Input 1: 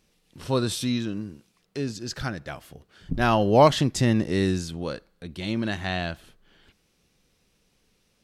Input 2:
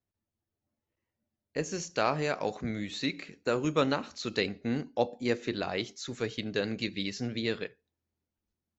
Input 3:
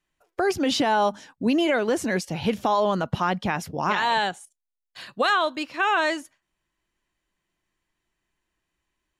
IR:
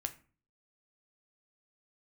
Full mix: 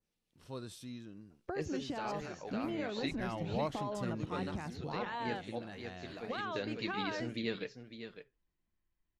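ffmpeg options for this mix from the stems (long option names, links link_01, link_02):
-filter_complex "[0:a]adynamicequalizer=threshold=0.00708:dfrequency=3900:dqfactor=0.77:tfrequency=3900:tqfactor=0.77:attack=5:release=100:ratio=0.375:range=2.5:mode=cutabove:tftype=bell,volume=-20dB,asplit=2[link_01][link_02];[1:a]lowpass=5200,flanger=delay=1.8:depth=6.8:regen=52:speed=0.83:shape=triangular,volume=-1.5dB,asplit=2[link_03][link_04];[link_04]volume=-10dB[link_05];[2:a]aemphasis=mode=reproduction:type=bsi,acompressor=threshold=-22dB:ratio=6,adelay=1100,volume=-14dB[link_06];[link_02]apad=whole_len=387397[link_07];[link_03][link_07]sidechaincompress=threshold=-55dB:ratio=12:attack=16:release=827[link_08];[link_05]aecho=0:1:553:1[link_09];[link_01][link_08][link_06][link_09]amix=inputs=4:normalize=0"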